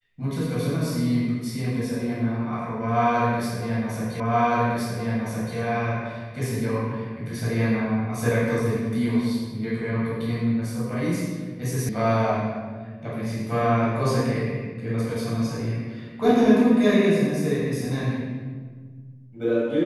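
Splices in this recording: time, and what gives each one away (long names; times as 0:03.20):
0:04.20: the same again, the last 1.37 s
0:11.89: cut off before it has died away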